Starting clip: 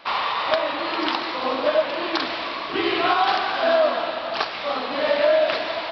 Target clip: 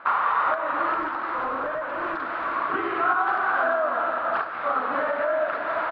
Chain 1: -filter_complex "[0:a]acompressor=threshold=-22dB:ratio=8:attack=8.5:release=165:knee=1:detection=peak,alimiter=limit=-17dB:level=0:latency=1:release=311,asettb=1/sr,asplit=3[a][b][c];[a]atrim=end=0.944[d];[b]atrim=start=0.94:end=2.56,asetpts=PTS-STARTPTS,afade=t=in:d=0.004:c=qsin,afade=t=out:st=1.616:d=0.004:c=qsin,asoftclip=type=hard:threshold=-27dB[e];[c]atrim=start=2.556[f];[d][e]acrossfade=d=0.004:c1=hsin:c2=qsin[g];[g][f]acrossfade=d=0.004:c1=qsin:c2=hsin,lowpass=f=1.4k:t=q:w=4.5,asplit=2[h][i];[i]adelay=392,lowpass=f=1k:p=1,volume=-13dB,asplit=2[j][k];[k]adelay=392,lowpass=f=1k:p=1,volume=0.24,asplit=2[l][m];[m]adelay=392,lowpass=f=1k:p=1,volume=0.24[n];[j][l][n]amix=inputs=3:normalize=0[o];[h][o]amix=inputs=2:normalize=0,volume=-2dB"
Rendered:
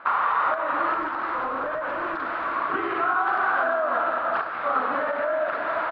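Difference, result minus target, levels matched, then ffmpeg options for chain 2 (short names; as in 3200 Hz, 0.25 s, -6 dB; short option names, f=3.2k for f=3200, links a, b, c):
compressor: peak gain reduction +9 dB
-filter_complex "[0:a]alimiter=limit=-17dB:level=0:latency=1:release=311,asettb=1/sr,asplit=3[a][b][c];[a]atrim=end=0.944[d];[b]atrim=start=0.94:end=2.56,asetpts=PTS-STARTPTS,afade=t=in:d=0.004:c=qsin,afade=t=out:st=1.616:d=0.004:c=qsin,asoftclip=type=hard:threshold=-27dB[e];[c]atrim=start=2.556[f];[d][e]acrossfade=d=0.004:c1=hsin:c2=qsin[g];[g][f]acrossfade=d=0.004:c1=qsin:c2=hsin,lowpass=f=1.4k:t=q:w=4.5,asplit=2[h][i];[i]adelay=392,lowpass=f=1k:p=1,volume=-13dB,asplit=2[j][k];[k]adelay=392,lowpass=f=1k:p=1,volume=0.24,asplit=2[l][m];[m]adelay=392,lowpass=f=1k:p=1,volume=0.24[n];[j][l][n]amix=inputs=3:normalize=0[o];[h][o]amix=inputs=2:normalize=0,volume=-2dB"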